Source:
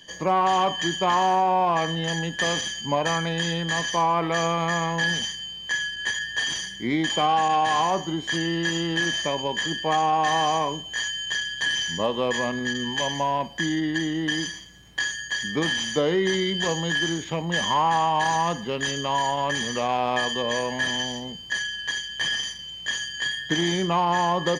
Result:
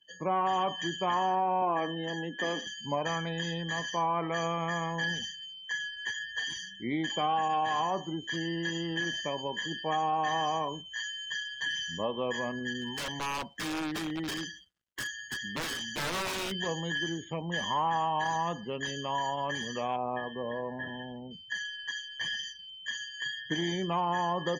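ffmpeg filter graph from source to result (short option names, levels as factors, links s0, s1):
-filter_complex "[0:a]asettb=1/sr,asplit=3[s0][s1][s2];[s0]atrim=end=1.624[s3];[s1]atrim=start=1.62:end=2.67,asetpts=PTS-STARTPTS,afade=t=in:d=0.004:c=qsin,afade=t=out:st=1.046:d=0.004:c=qsin,highpass=f=260:t=q:w=1.9,highshelf=f=5300:g=-8[s4];[s2]atrim=start=2.666[s5];[s3][s4]acrossfade=d=0.004:c1=hsin:c2=qsin[s6];[s6][s5]acrossfade=d=0.004:c1=qsin:c2=hsin,asettb=1/sr,asplit=3[s7][s8][s9];[s7]atrim=end=12.774[s10];[s8]atrim=start=12.77:end=16.52,asetpts=PTS-STARTPTS,afade=t=in:d=0.004:c=qsin,afade=t=out:st=3.746:d=0.004:c=qsin,aeval=exprs='(mod(9.44*val(0)+1,2)-1)/9.44':c=same,acrusher=bits=6:mix=0:aa=0.5[s11];[s9]atrim=start=16.516[s12];[s10][s11]acrossfade=d=0.004:c1=hsin:c2=qsin[s13];[s13][s12]acrossfade=d=0.004:c1=qsin:c2=hsin,asettb=1/sr,asplit=3[s14][s15][s16];[s14]atrim=end=19.964[s17];[s15]atrim=start=19.96:end=21.31,asetpts=PTS-STARTPTS,afade=t=in:d=0.004:c=qsin,afade=t=out:st=1.346:d=0.004:c=qsin,lowpass=f=1200:p=1,aemphasis=mode=reproduction:type=50fm[s18];[s16]atrim=start=21.306[s19];[s17][s18]acrossfade=d=0.004:c1=hsin:c2=qsin[s20];[s20][s19]acrossfade=d=0.004:c1=qsin:c2=hsin,afftdn=nr=22:nf=-36,highshelf=f=6200:g=-6,volume=0.422"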